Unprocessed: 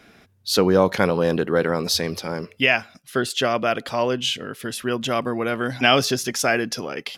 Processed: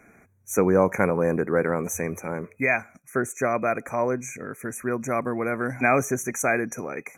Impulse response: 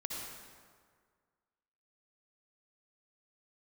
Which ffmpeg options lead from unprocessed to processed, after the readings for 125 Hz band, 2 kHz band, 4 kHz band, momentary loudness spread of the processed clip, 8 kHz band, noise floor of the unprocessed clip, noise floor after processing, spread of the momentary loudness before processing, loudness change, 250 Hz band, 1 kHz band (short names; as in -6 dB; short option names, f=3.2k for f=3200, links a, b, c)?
-2.5 dB, -3.5 dB, under -40 dB, 10 LU, -3.0 dB, -53 dBFS, -58 dBFS, 11 LU, -3.5 dB, -2.5 dB, -2.5 dB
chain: -af "afftfilt=real='re*(1-between(b*sr/4096,2500,5800))':imag='im*(1-between(b*sr/4096,2500,5800))':win_size=4096:overlap=0.75,volume=-2.5dB"